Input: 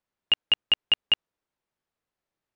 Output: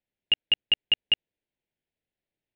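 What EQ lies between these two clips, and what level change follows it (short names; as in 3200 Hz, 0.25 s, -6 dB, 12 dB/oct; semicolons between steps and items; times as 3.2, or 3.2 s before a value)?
LPF 4300 Hz; fixed phaser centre 2800 Hz, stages 4; 0.0 dB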